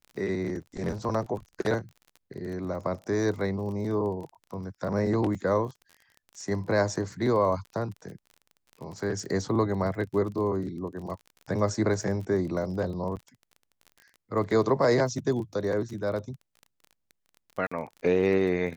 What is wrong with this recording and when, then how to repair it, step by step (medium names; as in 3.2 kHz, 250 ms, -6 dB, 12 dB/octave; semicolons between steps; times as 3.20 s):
crackle 32 per s -37 dBFS
13.16–13.17 s: dropout 8.5 ms
17.67–17.71 s: dropout 45 ms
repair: de-click; interpolate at 13.16 s, 8.5 ms; interpolate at 17.67 s, 45 ms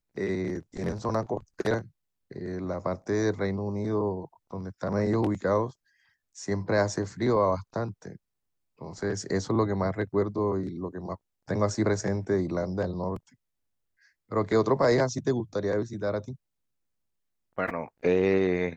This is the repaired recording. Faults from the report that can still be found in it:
nothing left